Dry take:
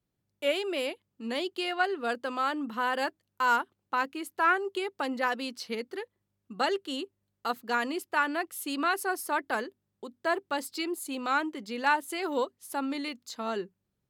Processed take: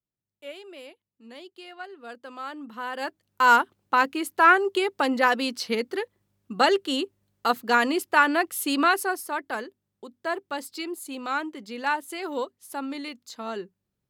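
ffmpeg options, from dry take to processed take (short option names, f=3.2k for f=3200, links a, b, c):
-af "volume=8dB,afade=t=in:st=1.93:d=1.04:silence=0.375837,afade=t=in:st=2.97:d=0.52:silence=0.266073,afade=t=out:st=8.8:d=0.45:silence=0.375837"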